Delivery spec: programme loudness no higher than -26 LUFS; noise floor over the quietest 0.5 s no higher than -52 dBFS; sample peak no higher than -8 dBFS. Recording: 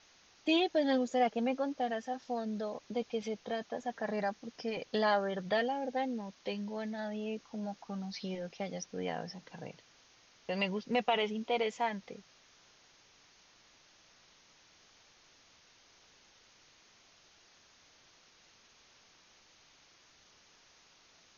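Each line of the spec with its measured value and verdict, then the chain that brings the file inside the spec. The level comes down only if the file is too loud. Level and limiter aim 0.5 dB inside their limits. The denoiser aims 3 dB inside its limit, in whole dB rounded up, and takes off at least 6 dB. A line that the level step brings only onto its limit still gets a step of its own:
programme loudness -35.0 LUFS: pass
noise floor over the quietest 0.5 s -64 dBFS: pass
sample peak -16.0 dBFS: pass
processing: none needed

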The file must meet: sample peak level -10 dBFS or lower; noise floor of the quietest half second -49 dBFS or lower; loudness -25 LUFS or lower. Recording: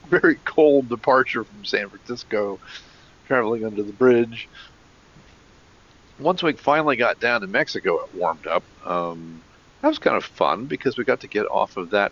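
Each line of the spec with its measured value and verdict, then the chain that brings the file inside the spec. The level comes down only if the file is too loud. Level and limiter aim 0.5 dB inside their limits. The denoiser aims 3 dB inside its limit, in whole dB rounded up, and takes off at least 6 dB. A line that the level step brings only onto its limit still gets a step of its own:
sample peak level -5.0 dBFS: fail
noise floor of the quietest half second -52 dBFS: pass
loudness -21.5 LUFS: fail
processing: trim -4 dB; peak limiter -10.5 dBFS

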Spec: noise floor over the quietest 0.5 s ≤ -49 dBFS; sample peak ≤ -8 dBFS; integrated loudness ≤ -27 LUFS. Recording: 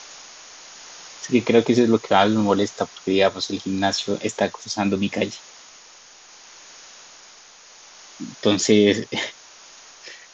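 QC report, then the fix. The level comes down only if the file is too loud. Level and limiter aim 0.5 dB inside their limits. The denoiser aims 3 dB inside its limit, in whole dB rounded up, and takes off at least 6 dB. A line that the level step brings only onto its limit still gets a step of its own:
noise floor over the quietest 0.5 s -47 dBFS: fail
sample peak -3.0 dBFS: fail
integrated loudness -20.5 LUFS: fail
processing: trim -7 dB

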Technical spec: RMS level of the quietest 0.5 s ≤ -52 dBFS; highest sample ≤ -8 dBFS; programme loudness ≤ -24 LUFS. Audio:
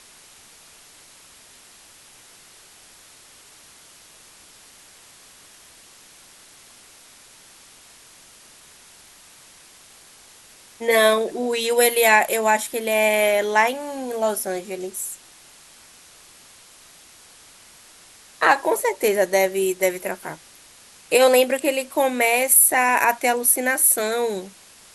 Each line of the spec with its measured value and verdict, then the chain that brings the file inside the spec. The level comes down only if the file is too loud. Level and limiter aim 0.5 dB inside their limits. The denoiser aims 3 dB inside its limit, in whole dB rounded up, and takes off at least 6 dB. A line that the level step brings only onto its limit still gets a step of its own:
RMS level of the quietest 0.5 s -49 dBFS: fail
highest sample -3.5 dBFS: fail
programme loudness -19.0 LUFS: fail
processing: trim -5.5 dB

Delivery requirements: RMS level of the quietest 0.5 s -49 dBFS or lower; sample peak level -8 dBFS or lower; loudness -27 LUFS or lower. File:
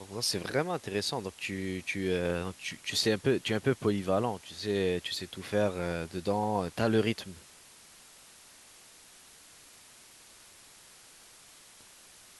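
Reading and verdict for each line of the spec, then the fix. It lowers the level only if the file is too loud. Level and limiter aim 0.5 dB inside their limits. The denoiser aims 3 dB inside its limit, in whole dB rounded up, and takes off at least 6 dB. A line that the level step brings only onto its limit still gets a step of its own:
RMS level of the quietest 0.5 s -55 dBFS: pass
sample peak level -12.5 dBFS: pass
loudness -31.5 LUFS: pass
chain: none needed

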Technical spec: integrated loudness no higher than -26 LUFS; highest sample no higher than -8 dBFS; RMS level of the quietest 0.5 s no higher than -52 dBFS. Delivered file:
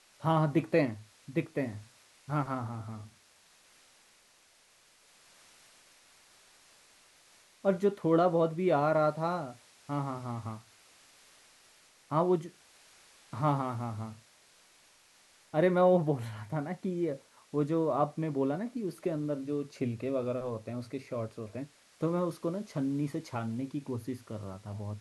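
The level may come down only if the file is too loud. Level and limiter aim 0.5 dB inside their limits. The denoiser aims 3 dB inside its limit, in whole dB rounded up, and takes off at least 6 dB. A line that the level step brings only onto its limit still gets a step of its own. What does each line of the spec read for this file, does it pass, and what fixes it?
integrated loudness -32.0 LUFS: pass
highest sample -14.0 dBFS: pass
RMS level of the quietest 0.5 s -64 dBFS: pass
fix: none needed

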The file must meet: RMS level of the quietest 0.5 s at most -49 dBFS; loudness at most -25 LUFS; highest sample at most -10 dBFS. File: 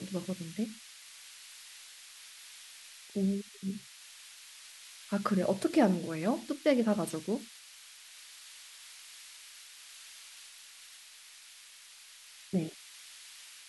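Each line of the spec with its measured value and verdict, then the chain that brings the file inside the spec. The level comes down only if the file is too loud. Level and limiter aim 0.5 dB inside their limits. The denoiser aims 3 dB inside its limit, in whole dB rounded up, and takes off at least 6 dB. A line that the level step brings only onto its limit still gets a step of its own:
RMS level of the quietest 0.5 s -54 dBFS: pass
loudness -32.5 LUFS: pass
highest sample -13.5 dBFS: pass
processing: none needed

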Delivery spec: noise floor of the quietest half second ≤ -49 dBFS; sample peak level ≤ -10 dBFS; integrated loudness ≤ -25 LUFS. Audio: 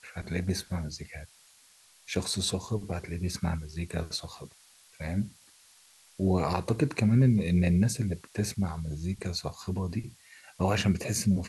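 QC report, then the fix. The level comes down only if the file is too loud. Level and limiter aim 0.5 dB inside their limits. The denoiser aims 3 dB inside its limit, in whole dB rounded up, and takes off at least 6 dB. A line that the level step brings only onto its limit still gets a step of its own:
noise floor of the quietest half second -59 dBFS: pass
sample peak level -13.0 dBFS: pass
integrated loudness -30.0 LUFS: pass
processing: none needed

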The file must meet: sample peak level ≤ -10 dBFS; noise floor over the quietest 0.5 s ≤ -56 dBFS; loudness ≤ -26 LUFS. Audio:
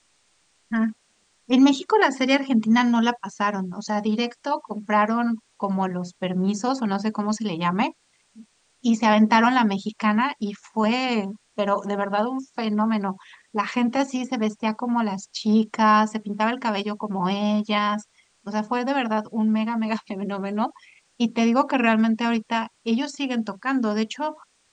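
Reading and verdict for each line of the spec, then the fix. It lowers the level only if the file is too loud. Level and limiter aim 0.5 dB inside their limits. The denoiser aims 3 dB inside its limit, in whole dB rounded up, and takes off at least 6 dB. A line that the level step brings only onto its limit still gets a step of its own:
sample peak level -3.5 dBFS: fail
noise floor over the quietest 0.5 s -65 dBFS: pass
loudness -23.5 LUFS: fail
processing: trim -3 dB; peak limiter -10.5 dBFS

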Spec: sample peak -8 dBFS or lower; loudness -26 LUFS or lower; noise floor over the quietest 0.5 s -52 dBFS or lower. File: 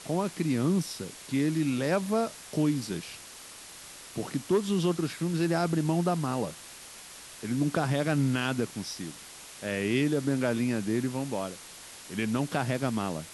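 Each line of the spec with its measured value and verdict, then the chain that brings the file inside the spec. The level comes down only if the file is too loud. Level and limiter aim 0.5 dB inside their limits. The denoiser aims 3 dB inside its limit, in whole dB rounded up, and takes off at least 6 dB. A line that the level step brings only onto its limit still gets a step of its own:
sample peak -14.5 dBFS: pass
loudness -29.5 LUFS: pass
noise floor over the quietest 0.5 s -47 dBFS: fail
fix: noise reduction 8 dB, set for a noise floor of -47 dBFS

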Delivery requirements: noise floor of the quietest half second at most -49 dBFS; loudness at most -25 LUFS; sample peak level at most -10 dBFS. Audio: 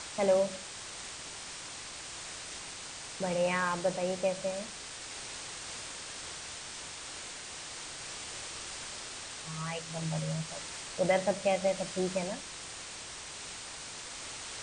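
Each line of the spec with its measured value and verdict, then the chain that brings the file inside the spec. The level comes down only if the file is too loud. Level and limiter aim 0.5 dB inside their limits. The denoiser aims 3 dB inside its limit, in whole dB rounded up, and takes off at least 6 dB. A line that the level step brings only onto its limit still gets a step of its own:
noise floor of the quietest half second -44 dBFS: fail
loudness -35.5 LUFS: pass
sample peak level -15.5 dBFS: pass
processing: noise reduction 8 dB, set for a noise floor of -44 dBFS

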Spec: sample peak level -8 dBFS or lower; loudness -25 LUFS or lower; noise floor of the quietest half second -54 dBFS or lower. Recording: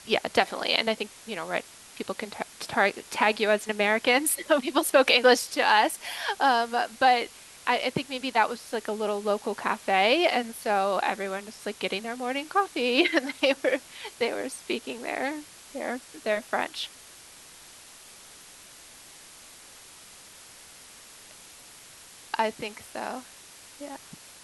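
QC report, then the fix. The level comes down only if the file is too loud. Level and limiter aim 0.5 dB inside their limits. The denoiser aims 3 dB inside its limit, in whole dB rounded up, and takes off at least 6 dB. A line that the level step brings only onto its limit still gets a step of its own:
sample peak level -3.5 dBFS: fail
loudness -26.0 LUFS: pass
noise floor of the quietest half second -49 dBFS: fail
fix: noise reduction 8 dB, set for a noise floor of -49 dBFS; peak limiter -8.5 dBFS

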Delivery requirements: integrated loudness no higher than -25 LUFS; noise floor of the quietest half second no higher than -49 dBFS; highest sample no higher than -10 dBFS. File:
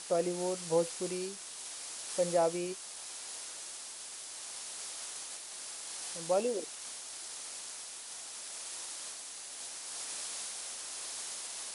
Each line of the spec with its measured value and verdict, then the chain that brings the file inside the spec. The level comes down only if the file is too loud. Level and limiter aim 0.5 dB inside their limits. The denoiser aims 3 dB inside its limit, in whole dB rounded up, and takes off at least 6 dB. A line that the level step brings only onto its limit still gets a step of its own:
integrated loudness -37.5 LUFS: pass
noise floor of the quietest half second -46 dBFS: fail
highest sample -18.0 dBFS: pass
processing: noise reduction 6 dB, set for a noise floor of -46 dBFS

